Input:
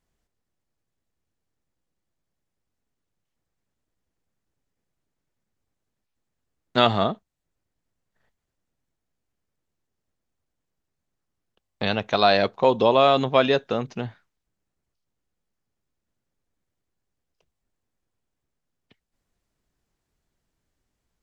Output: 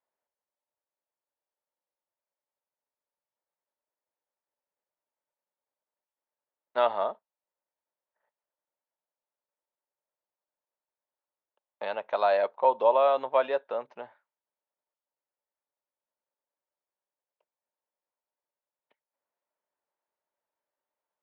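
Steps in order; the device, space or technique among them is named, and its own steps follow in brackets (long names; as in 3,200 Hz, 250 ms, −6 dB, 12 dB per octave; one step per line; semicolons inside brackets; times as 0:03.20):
tin-can telephone (band-pass filter 590–2,000 Hz; hollow resonant body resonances 580/900 Hz, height 10 dB, ringing for 25 ms)
level −8 dB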